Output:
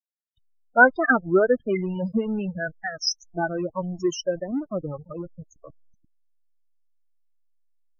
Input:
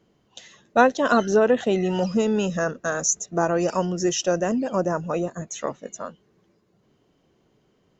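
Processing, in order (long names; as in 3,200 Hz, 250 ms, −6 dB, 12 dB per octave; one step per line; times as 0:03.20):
spectral dynamics exaggerated over time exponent 2
hollow resonant body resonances 1,500/2,100 Hz, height 14 dB, ringing for 45 ms
slack as between gear wheels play −31.5 dBFS
spectral peaks only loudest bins 16
wow of a warped record 33 1/3 rpm, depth 250 cents
level +1.5 dB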